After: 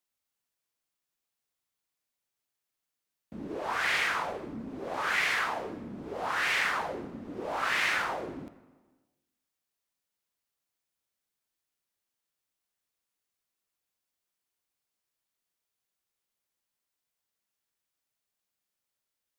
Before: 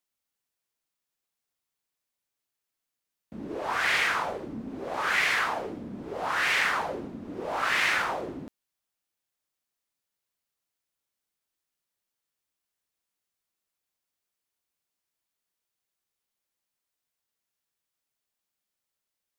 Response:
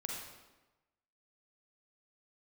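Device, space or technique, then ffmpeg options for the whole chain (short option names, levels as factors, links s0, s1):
ducked reverb: -filter_complex "[0:a]asplit=3[s0][s1][s2];[1:a]atrim=start_sample=2205[s3];[s1][s3]afir=irnorm=-1:irlink=0[s4];[s2]apad=whole_len=854660[s5];[s4][s5]sidechaincompress=threshold=0.0158:ratio=3:attack=46:release=1080,volume=0.562[s6];[s0][s6]amix=inputs=2:normalize=0,volume=0.631"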